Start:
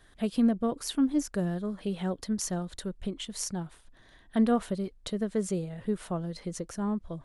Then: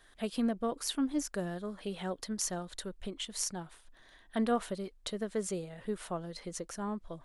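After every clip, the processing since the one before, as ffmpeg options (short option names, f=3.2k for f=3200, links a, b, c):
-af "equalizer=f=97:w=0.35:g=-11"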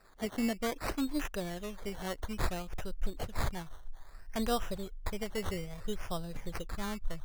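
-af "acrusher=samples=14:mix=1:aa=0.000001:lfo=1:lforange=8.4:lforate=0.6,asubboost=boost=10:cutoff=80"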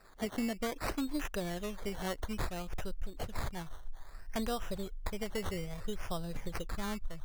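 -af "acompressor=threshold=-33dB:ratio=6,volume=2dB"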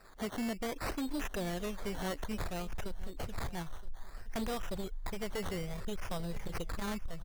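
-af "volume=34.5dB,asoftclip=hard,volume=-34.5dB,aecho=1:1:971:0.119,volume=2dB"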